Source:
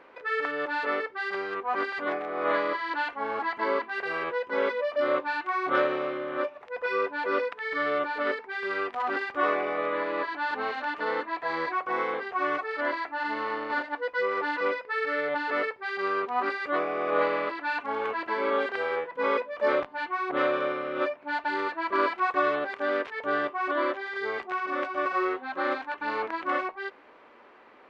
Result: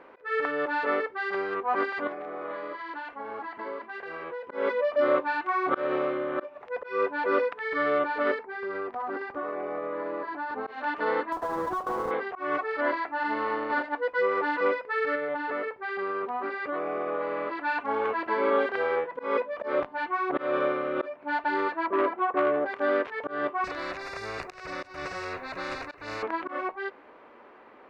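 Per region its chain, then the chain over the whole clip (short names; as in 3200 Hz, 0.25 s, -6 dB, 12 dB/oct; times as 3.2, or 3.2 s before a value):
2.07–4.48 compressor 4:1, threshold -31 dBFS + flange 1 Hz, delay 3.2 ms, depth 5.6 ms, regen -76%
8.43–10.67 bell 3400 Hz -13.5 dB 1.7 oct + compressor 12:1, threshold -31 dBFS + synth low-pass 4600 Hz, resonance Q 1.5
11.32–12.11 half-waves squared off + compressor 12:1, threshold -30 dBFS + resonant high shelf 1800 Hz -11 dB, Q 1.5
15.15–17.52 LPF 3400 Hz 6 dB/oct + compressor, threshold -29 dBFS
21.86–22.66 band-pass 540 Hz, Q 0.52 + tilt -2 dB/oct + core saturation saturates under 1100 Hz
23.64–26.23 fixed phaser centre 860 Hz, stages 6 + spectral compressor 4:1
whole clip: auto swell 0.201 s; high shelf 2300 Hz -9.5 dB; gain +3.5 dB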